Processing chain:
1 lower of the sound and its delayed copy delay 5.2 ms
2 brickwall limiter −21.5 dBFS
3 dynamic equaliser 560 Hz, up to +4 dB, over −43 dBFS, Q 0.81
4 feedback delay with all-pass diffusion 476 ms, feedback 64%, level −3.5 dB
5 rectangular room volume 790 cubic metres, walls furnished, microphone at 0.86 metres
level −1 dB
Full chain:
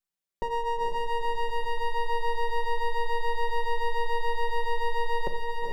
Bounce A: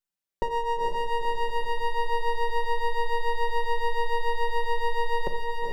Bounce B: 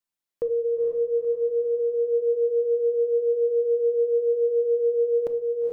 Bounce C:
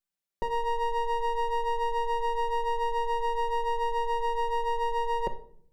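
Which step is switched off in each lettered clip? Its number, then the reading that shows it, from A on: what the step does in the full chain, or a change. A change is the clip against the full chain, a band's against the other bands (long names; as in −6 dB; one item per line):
2, change in integrated loudness +1.5 LU
1, change in crest factor −1.5 dB
4, echo-to-direct ratio 0.0 dB to −8.5 dB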